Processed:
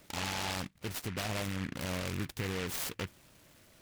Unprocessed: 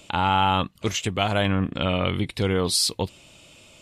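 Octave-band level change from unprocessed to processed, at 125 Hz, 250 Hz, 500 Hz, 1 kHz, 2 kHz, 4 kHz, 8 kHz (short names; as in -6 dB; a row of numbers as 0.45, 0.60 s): -12.5, -13.0, -14.5, -18.5, -9.5, -14.0, -11.0 dB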